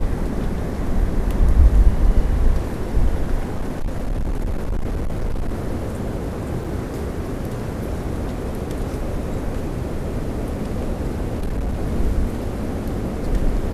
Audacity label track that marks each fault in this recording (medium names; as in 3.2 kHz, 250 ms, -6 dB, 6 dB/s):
3.530000	5.590000	clipped -18.5 dBFS
6.640000	6.650000	dropout 5.5 ms
11.380000	11.800000	clipped -19 dBFS